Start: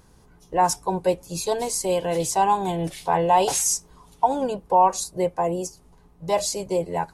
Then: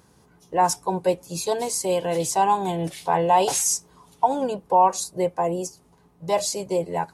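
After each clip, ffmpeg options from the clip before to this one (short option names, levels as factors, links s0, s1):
-af "highpass=100"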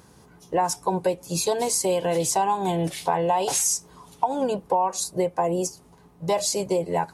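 -af "acompressor=threshold=0.0631:ratio=6,volume=1.68"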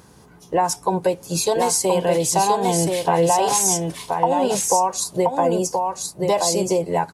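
-af "aecho=1:1:1027:0.631,volume=1.5"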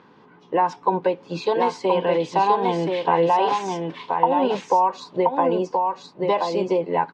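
-af "highpass=230,equalizer=f=260:t=q:w=4:g=3,equalizer=f=670:t=q:w=4:g=-6,equalizer=f=990:t=q:w=4:g=4,lowpass=f=3400:w=0.5412,lowpass=f=3400:w=1.3066"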